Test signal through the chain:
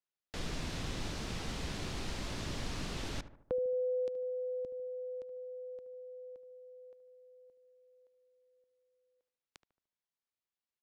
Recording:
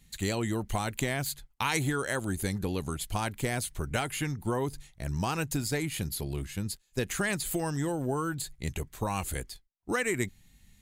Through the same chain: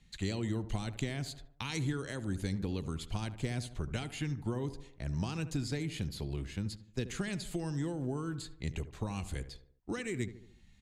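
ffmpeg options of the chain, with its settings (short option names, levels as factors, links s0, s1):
-filter_complex "[0:a]lowpass=5100,asplit=2[s0][s1];[s1]adelay=74,lowpass=f=1400:p=1,volume=0.224,asplit=2[s2][s3];[s3]adelay=74,lowpass=f=1400:p=1,volume=0.49,asplit=2[s4][s5];[s5]adelay=74,lowpass=f=1400:p=1,volume=0.49,asplit=2[s6][s7];[s7]adelay=74,lowpass=f=1400:p=1,volume=0.49,asplit=2[s8][s9];[s9]adelay=74,lowpass=f=1400:p=1,volume=0.49[s10];[s0][s2][s4][s6][s8][s10]amix=inputs=6:normalize=0,acrossover=split=360|3000[s11][s12][s13];[s12]acompressor=threshold=0.00562:ratio=3[s14];[s11][s14][s13]amix=inputs=3:normalize=0,volume=0.75"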